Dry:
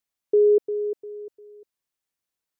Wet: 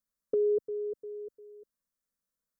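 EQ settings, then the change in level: dynamic bell 370 Hz, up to -6 dB, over -29 dBFS, Q 0.85; bass shelf 280 Hz +10.5 dB; static phaser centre 530 Hz, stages 8; -2.5 dB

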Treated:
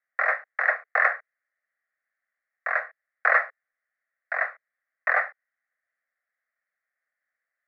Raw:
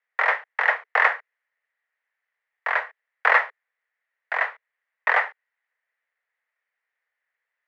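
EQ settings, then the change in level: low-pass 2.4 kHz 6 dB/octave; bass shelf 370 Hz -5 dB; static phaser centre 620 Hz, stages 8; +1.5 dB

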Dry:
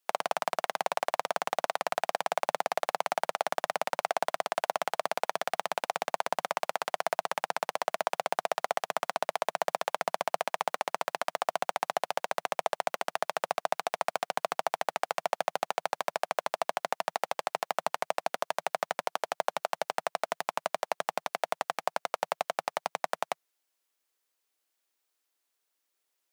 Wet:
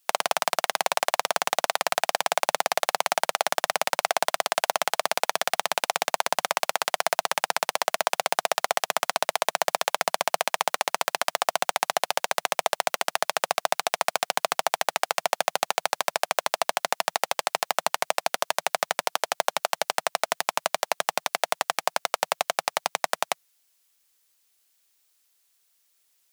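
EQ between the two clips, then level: treble shelf 2.1 kHz +11 dB; +3.0 dB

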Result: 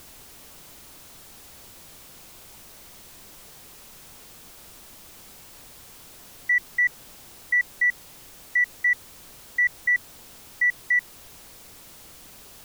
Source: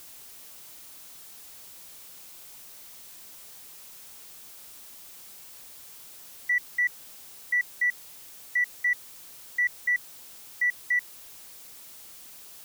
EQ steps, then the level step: tilt EQ -2 dB/octave; +6.0 dB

